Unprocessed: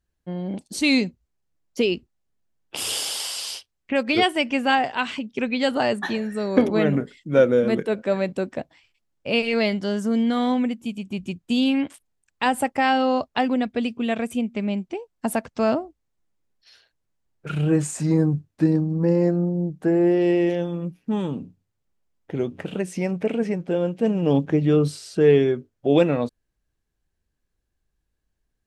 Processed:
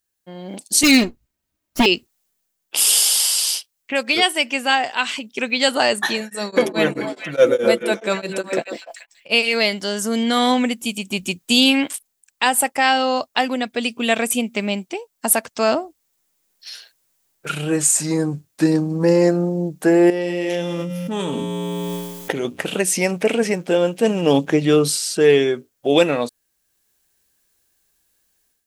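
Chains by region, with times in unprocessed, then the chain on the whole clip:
0.83–1.86 s: comb filter that takes the minimum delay 3.2 ms + tone controls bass +15 dB, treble -9 dB
6.20–9.32 s: comb 5.9 ms, depth 52% + repeats whose band climbs or falls 145 ms, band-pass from 320 Hz, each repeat 1.4 oct, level -2 dB + tremolo of two beating tones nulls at 4.7 Hz
20.10–22.45 s: feedback comb 59 Hz, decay 1.3 s, harmonics odd, mix 80% + level flattener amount 100%
whole clip: RIAA curve recording; level rider gain up to 12 dB; trim -1 dB

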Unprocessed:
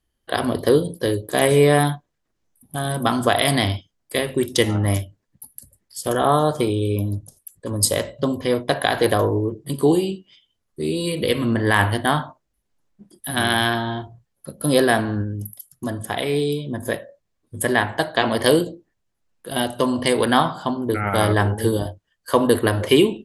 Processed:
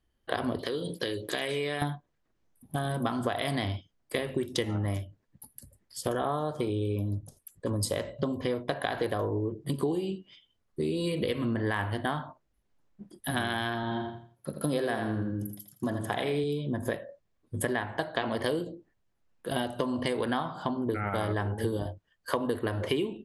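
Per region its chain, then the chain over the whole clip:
0.59–1.82 s: compression 4:1, threshold -27 dBFS + frequency weighting D
13.83–16.44 s: high-pass 98 Hz + feedback delay 83 ms, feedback 30%, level -7.5 dB
whole clip: treble shelf 5.1 kHz -10.5 dB; compression 6:1, threshold -27 dBFS

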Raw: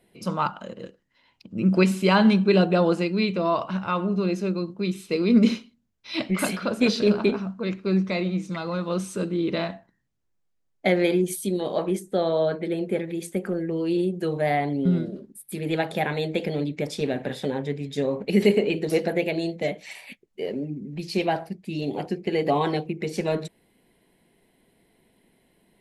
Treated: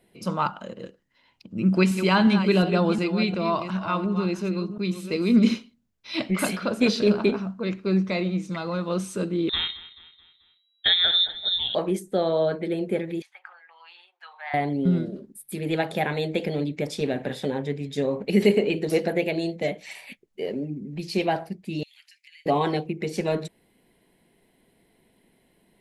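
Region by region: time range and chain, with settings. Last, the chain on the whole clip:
1.55–5.54 s: chunks repeated in reverse 359 ms, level -10 dB + peaking EQ 520 Hz -4.5 dB 0.88 oct
9.49–11.75 s: frequency inversion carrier 3.9 kHz + feedback delay 217 ms, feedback 48%, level -17.5 dB
13.22–14.54 s: Chebyshev high-pass 830 Hz, order 5 + distance through air 290 m
21.83–22.46 s: steep high-pass 1.9 kHz + compression 4:1, threshold -50 dBFS
whole clip: none

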